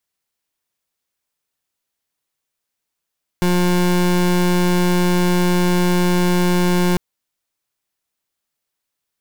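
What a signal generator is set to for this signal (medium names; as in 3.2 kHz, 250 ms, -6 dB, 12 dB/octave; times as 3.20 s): pulse 178 Hz, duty 28% -15.5 dBFS 3.55 s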